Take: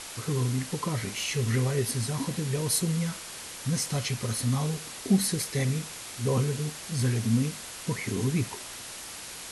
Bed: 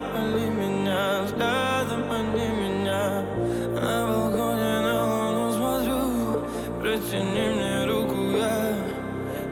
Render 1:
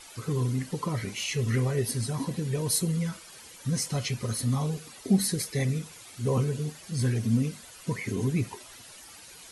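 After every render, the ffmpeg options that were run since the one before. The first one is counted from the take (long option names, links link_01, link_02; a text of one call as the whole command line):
ffmpeg -i in.wav -af "afftdn=noise_reduction=12:noise_floor=-41" out.wav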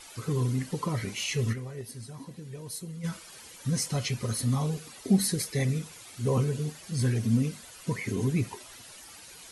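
ffmpeg -i in.wav -filter_complex "[0:a]asplit=3[link_01][link_02][link_03];[link_01]afade=type=out:start_time=1.52:duration=0.02[link_04];[link_02]agate=range=-12dB:threshold=-23dB:ratio=16:release=100:detection=peak,afade=type=in:start_time=1.52:duration=0.02,afade=type=out:start_time=3.03:duration=0.02[link_05];[link_03]afade=type=in:start_time=3.03:duration=0.02[link_06];[link_04][link_05][link_06]amix=inputs=3:normalize=0" out.wav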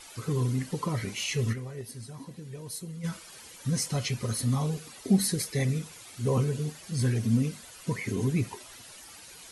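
ffmpeg -i in.wav -af anull out.wav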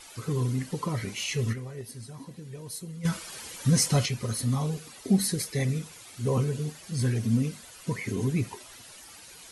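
ffmpeg -i in.wav -filter_complex "[0:a]asettb=1/sr,asplit=3[link_01][link_02][link_03];[link_01]atrim=end=3.054[link_04];[link_02]atrim=start=3.05:end=4.06,asetpts=PTS-STARTPTS,afade=type=in:duration=0.004:curve=qsin,afade=type=out:start_time=1.006:duration=0.004:curve=qsin,acontrast=66[link_05];[link_03]atrim=start=4.056[link_06];[link_04][link_05]acrossfade=duration=0.004:curve1=hsin:curve2=qsin[link_07];[link_07][link_06]acrossfade=duration=0.004:curve1=qsin:curve2=hsin" out.wav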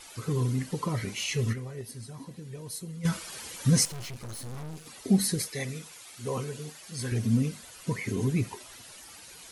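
ffmpeg -i in.wav -filter_complex "[0:a]asettb=1/sr,asplit=3[link_01][link_02][link_03];[link_01]atrim=end=3.854[link_04];[link_02]atrim=start=3.85:end=4.86,asetpts=PTS-STARTPTS,afade=type=in:duration=0.004:curve=qsin,afade=type=out:start_time=1.006:duration=0.004:curve=qsin,aeval=exprs='(tanh(79.4*val(0)+0.75)-tanh(0.75))/79.4':channel_layout=same[link_05];[link_03]atrim=start=4.856[link_06];[link_04][link_05]acrossfade=duration=0.004:curve1=hsin:curve2=qsin[link_07];[link_07][link_06]acrossfade=duration=0.004:curve1=qsin:curve2=hsin,asettb=1/sr,asplit=3[link_08][link_09][link_10];[link_08]atrim=end=5.484[link_11];[link_09]atrim=start=5.48:end=7.12,asetpts=PTS-STARTPTS,afade=type=in:duration=0.004:curve=qsin,afade=type=out:start_time=1.636:duration=0.004:curve=qsin,lowshelf=frequency=330:gain=-11.5[link_12];[link_10]atrim=start=7.116[link_13];[link_11][link_12]acrossfade=duration=0.004:curve1=hsin:curve2=qsin[link_14];[link_14][link_13]acrossfade=duration=0.004:curve1=qsin:curve2=hsin" out.wav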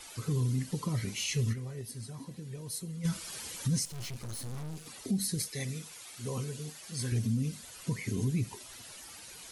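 ffmpeg -i in.wav -filter_complex "[0:a]acrossover=split=260|3000[link_01][link_02][link_03];[link_02]acompressor=threshold=-55dB:ratio=1.5[link_04];[link_01][link_04][link_03]amix=inputs=3:normalize=0,alimiter=limit=-22.5dB:level=0:latency=1:release=198" out.wav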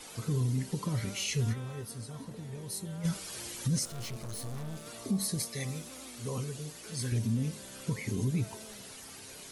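ffmpeg -i in.wav -i bed.wav -filter_complex "[1:a]volume=-26dB[link_01];[0:a][link_01]amix=inputs=2:normalize=0" out.wav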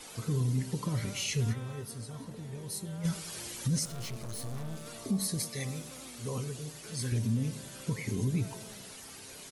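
ffmpeg -i in.wav -filter_complex "[0:a]asplit=2[link_01][link_02];[link_02]adelay=104,lowpass=frequency=2000:poles=1,volume=-16.5dB,asplit=2[link_03][link_04];[link_04]adelay=104,lowpass=frequency=2000:poles=1,volume=0.55,asplit=2[link_05][link_06];[link_06]adelay=104,lowpass=frequency=2000:poles=1,volume=0.55,asplit=2[link_07][link_08];[link_08]adelay=104,lowpass=frequency=2000:poles=1,volume=0.55,asplit=2[link_09][link_10];[link_10]adelay=104,lowpass=frequency=2000:poles=1,volume=0.55[link_11];[link_01][link_03][link_05][link_07][link_09][link_11]amix=inputs=6:normalize=0" out.wav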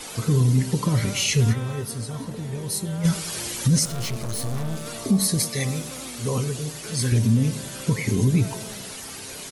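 ffmpeg -i in.wav -af "volume=11dB" out.wav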